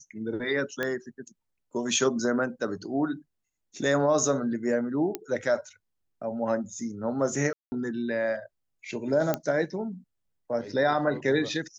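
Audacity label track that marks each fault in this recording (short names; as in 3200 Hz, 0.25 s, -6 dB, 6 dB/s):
0.830000	0.830000	pop -15 dBFS
5.150000	5.150000	pop -15 dBFS
7.530000	7.720000	gap 0.19 s
9.340000	9.340000	pop -11 dBFS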